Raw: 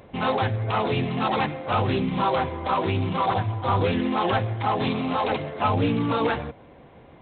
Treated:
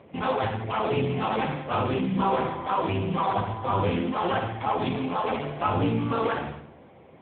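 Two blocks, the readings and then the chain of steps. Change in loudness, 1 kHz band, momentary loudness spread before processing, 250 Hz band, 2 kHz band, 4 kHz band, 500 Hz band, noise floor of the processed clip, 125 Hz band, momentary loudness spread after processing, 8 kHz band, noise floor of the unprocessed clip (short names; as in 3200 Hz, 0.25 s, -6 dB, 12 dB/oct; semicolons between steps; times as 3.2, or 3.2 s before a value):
-2.5 dB, -2.0 dB, 3 LU, -2.0 dB, -3.5 dB, -4.5 dB, -1.5 dB, -51 dBFS, -4.0 dB, 3 LU, n/a, -49 dBFS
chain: on a send: flutter echo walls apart 11.6 m, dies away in 0.72 s; on the sum: gain -1 dB; AMR-NB 6.7 kbps 8000 Hz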